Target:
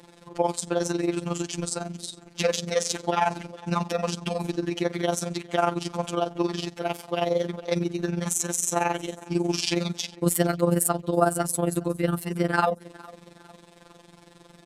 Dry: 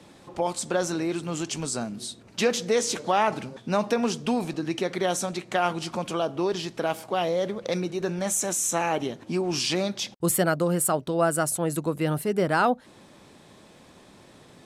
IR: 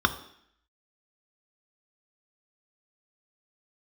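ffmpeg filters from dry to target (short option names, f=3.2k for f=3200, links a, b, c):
-af "aecho=1:1:426|852|1278:0.0708|0.0326|0.015,tremolo=f=22:d=0.788,afftfilt=real='hypot(re,im)*cos(PI*b)':imag='0':win_size=1024:overlap=0.75,volume=6dB"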